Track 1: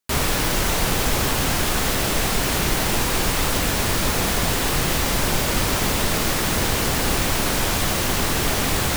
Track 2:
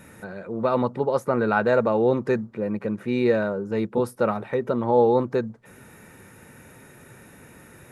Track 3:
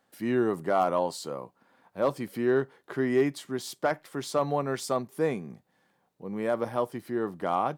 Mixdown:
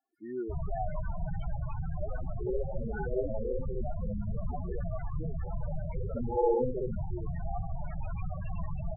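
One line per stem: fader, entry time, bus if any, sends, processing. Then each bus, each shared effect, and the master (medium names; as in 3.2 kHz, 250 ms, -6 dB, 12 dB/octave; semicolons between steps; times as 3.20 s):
-2.5 dB, 0.40 s, bus A, no send, no echo send, elliptic band-stop 180–600 Hz, stop band 50 dB; bit crusher 5-bit
2.23 s -19.5 dB -> 2.47 s -11.5 dB -> 4.46 s -11.5 dB -> 4.66 s -18.5 dB -> 5.79 s -18.5 dB -> 6.17 s -6.5 dB, 1.40 s, bus A, no send, echo send -3.5 dB, none
-14.5 dB, 0.00 s, no bus, no send, no echo send, comb 2.8 ms, depth 76%
bus A: 0.0 dB, peak limiter -19.5 dBFS, peak gain reduction 10.5 dB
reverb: none
echo: feedback delay 63 ms, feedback 42%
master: loudest bins only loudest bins 8; low-pass 4 kHz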